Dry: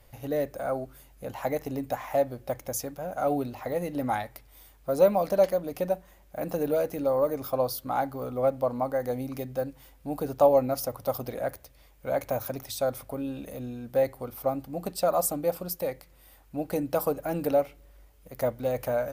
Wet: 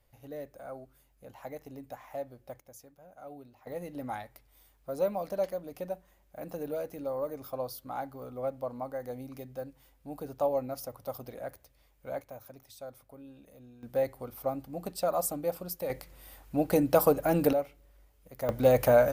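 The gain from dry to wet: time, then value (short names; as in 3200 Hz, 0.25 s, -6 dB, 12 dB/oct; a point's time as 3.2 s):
-13 dB
from 2.6 s -20 dB
from 3.67 s -9 dB
from 12.21 s -16.5 dB
from 13.83 s -4.5 dB
from 15.9 s +4 dB
from 17.53 s -6 dB
from 18.49 s +6.5 dB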